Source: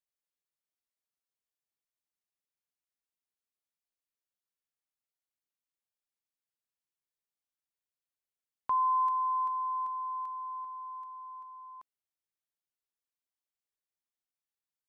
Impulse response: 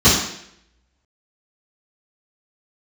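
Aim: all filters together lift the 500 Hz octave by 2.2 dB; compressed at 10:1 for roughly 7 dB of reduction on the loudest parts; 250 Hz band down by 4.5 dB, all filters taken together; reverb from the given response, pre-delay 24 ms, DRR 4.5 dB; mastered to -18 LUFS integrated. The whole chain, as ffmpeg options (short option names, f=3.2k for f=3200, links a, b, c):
-filter_complex "[0:a]equalizer=f=250:t=o:g=-8,equalizer=f=500:t=o:g=4.5,acompressor=threshold=-32dB:ratio=10,asplit=2[a][b];[1:a]atrim=start_sample=2205,adelay=24[c];[b][c]afir=irnorm=-1:irlink=0,volume=-29dB[d];[a][d]amix=inputs=2:normalize=0,volume=19dB"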